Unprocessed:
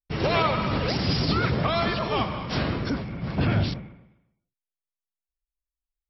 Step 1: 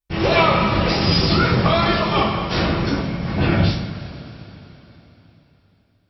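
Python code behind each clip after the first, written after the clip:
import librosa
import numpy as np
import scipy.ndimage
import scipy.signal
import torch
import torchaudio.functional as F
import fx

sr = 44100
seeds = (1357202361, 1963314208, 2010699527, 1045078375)

y = fx.rev_double_slope(x, sr, seeds[0], early_s=0.4, late_s=3.7, knee_db=-18, drr_db=-4.5)
y = F.gain(torch.from_numpy(y), 2.0).numpy()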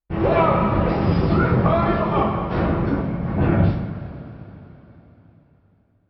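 y = scipy.signal.sosfilt(scipy.signal.butter(2, 1300.0, 'lowpass', fs=sr, output='sos'), x)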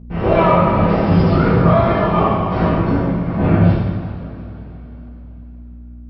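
y = fx.add_hum(x, sr, base_hz=60, snr_db=17)
y = fx.rev_double_slope(y, sr, seeds[1], early_s=0.87, late_s=2.9, knee_db=-18, drr_db=-4.5)
y = F.gain(torch.from_numpy(y), -1.5).numpy()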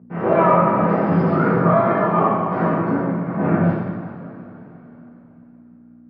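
y = scipy.signal.sosfilt(scipy.signal.butter(4, 150.0, 'highpass', fs=sr, output='sos'), x)
y = fx.high_shelf_res(y, sr, hz=2400.0, db=-12.0, q=1.5)
y = F.gain(torch.from_numpy(y), -2.5).numpy()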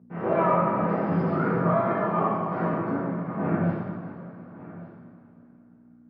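y = x + 10.0 ** (-17.5 / 20.0) * np.pad(x, (int(1157 * sr / 1000.0), 0))[:len(x)]
y = F.gain(torch.from_numpy(y), -7.5).numpy()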